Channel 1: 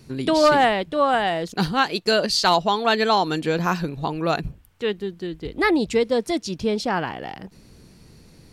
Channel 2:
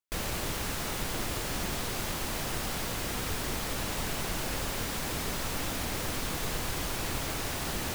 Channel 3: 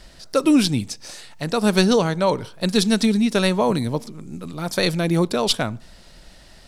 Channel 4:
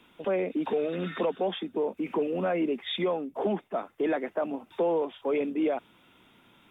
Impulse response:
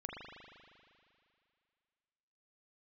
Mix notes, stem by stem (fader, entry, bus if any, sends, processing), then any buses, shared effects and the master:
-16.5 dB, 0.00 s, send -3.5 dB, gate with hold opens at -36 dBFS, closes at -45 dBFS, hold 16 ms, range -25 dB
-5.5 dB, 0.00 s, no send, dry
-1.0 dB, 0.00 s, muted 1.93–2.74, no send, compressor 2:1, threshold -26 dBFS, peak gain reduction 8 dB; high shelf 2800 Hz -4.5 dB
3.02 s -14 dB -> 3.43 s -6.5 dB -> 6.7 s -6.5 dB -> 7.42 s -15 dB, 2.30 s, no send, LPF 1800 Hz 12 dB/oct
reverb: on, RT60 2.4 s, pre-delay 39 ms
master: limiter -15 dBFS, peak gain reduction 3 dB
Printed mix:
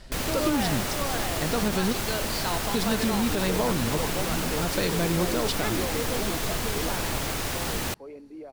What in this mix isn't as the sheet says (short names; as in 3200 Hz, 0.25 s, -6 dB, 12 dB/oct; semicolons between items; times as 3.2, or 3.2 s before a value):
stem 1: missing gate with hold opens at -36 dBFS, closes at -45 dBFS, hold 16 ms, range -25 dB; stem 2 -5.5 dB -> +4.0 dB; stem 4: entry 2.30 s -> 2.75 s